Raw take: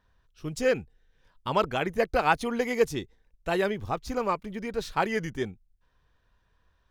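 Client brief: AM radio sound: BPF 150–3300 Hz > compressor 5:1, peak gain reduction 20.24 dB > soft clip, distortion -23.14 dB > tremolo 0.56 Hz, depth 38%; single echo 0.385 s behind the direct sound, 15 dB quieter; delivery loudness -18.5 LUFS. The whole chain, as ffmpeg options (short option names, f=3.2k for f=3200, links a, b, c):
-af "highpass=150,lowpass=3.3k,aecho=1:1:385:0.178,acompressor=threshold=-40dB:ratio=5,asoftclip=threshold=-29.5dB,tremolo=f=0.56:d=0.38,volume=27.5dB"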